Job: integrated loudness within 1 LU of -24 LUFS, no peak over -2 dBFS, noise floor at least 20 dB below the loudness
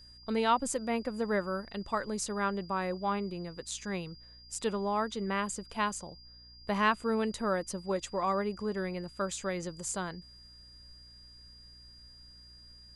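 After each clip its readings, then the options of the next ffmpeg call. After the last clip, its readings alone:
hum 60 Hz; harmonics up to 300 Hz; hum level -57 dBFS; steady tone 4800 Hz; tone level -53 dBFS; loudness -33.5 LUFS; peak -13.0 dBFS; loudness target -24.0 LUFS
-> -af "bandreject=f=60:t=h:w=4,bandreject=f=120:t=h:w=4,bandreject=f=180:t=h:w=4,bandreject=f=240:t=h:w=4,bandreject=f=300:t=h:w=4"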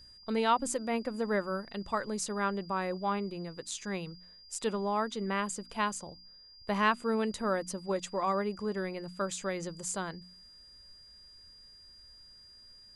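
hum none; steady tone 4800 Hz; tone level -53 dBFS
-> -af "bandreject=f=4.8k:w=30"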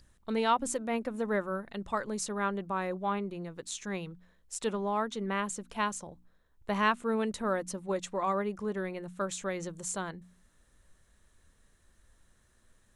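steady tone none; loudness -33.5 LUFS; peak -13.0 dBFS; loudness target -24.0 LUFS
-> -af "volume=9.5dB"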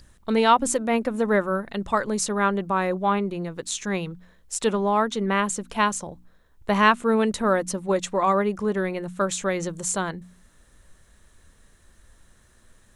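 loudness -24.0 LUFS; peak -3.5 dBFS; noise floor -58 dBFS

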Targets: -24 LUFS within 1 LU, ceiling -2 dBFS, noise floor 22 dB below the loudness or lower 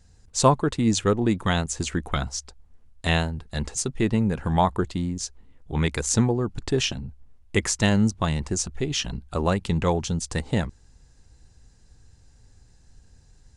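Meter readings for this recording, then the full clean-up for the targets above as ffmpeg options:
loudness -25.0 LUFS; peak -5.0 dBFS; loudness target -24.0 LUFS
-> -af "volume=1dB"

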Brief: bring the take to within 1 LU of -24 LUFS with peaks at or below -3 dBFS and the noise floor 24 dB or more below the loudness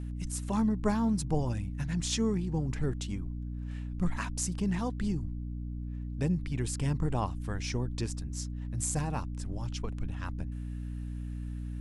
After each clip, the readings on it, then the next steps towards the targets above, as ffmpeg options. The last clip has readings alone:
hum 60 Hz; harmonics up to 300 Hz; hum level -35 dBFS; loudness -33.5 LUFS; peak -14.5 dBFS; loudness target -24.0 LUFS
-> -af "bandreject=f=60:t=h:w=6,bandreject=f=120:t=h:w=6,bandreject=f=180:t=h:w=6,bandreject=f=240:t=h:w=6,bandreject=f=300:t=h:w=6"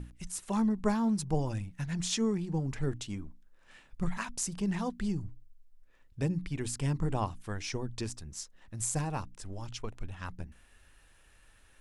hum none; loudness -34.5 LUFS; peak -15.0 dBFS; loudness target -24.0 LUFS
-> -af "volume=10.5dB"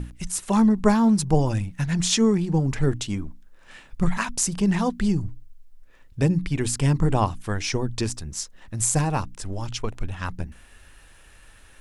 loudness -24.0 LUFS; peak -4.5 dBFS; noise floor -51 dBFS

